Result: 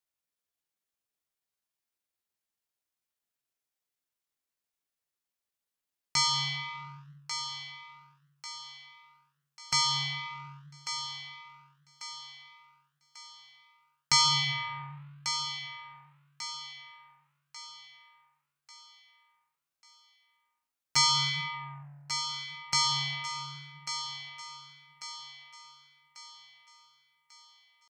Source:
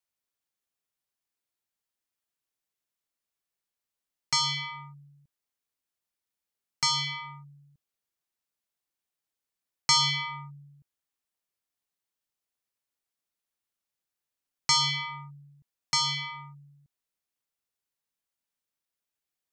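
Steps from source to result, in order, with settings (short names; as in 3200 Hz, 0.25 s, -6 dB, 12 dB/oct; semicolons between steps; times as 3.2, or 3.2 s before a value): flange 1.2 Hz, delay 8.8 ms, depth 8.1 ms, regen -89%; tempo 0.7×; thinning echo 1.143 s, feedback 45%, high-pass 320 Hz, level -9 dB; gain +3 dB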